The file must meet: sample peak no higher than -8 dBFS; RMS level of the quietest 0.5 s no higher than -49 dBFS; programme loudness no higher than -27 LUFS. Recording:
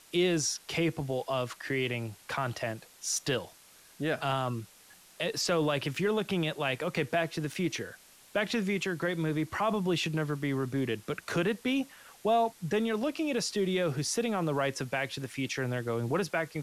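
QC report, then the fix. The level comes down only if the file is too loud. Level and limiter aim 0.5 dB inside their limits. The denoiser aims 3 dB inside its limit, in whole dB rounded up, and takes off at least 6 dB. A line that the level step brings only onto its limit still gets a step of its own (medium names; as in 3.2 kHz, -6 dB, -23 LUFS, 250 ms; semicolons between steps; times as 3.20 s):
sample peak -17.5 dBFS: pass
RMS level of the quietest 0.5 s -57 dBFS: pass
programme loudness -31.5 LUFS: pass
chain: none needed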